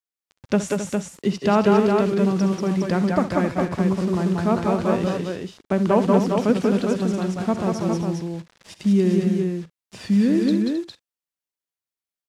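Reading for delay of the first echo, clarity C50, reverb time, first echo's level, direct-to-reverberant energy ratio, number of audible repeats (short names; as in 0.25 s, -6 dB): 65 ms, none, none, -14.0 dB, none, 5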